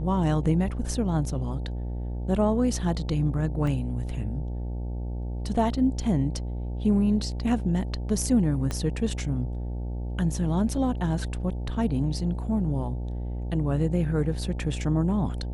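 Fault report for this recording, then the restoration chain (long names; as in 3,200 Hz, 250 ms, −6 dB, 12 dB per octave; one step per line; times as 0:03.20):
mains buzz 60 Hz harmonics 15 −31 dBFS
0:03.67: drop-out 3.3 ms
0:08.71: click −16 dBFS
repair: click removal
hum removal 60 Hz, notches 15
repair the gap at 0:03.67, 3.3 ms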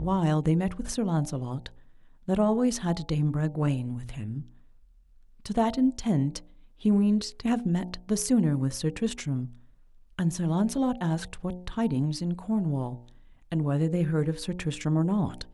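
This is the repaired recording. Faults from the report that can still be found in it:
0:08.71: click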